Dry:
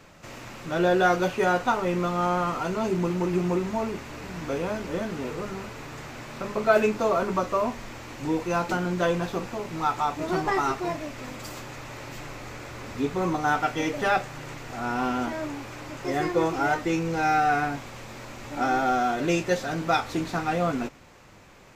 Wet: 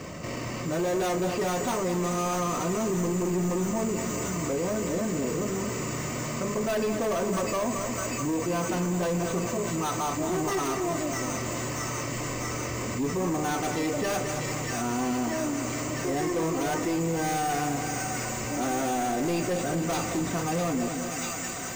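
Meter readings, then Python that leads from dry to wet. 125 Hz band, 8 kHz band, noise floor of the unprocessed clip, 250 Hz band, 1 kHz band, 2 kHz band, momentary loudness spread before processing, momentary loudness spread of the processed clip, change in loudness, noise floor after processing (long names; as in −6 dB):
+1.5 dB, +11.5 dB, −46 dBFS, +0.5 dB, −5.0 dB, −4.5 dB, 16 LU, 4 LU, −2.0 dB, −33 dBFS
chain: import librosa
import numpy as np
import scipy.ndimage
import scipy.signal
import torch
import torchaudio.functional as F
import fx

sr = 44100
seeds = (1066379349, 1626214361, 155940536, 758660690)

y = (np.kron(scipy.signal.resample_poly(x, 1, 6), np.eye(6)[0]) * 6)[:len(x)]
y = fx.air_absorb(y, sr, metres=190.0)
y = fx.notch_comb(y, sr, f0_hz=830.0)
y = fx.echo_wet_highpass(y, sr, ms=644, feedback_pct=78, hz=1600.0, wet_db=-8.5)
y = 10.0 ** (-26.5 / 20.0) * np.tanh(y / 10.0 ** (-26.5 / 20.0))
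y = fx.low_shelf(y, sr, hz=440.0, db=3.0)
y = fx.notch(y, sr, hz=1400.0, q=5.5)
y = fx.echo_feedback(y, sr, ms=218, feedback_pct=57, wet_db=-10.5)
y = fx.env_flatten(y, sr, amount_pct=50)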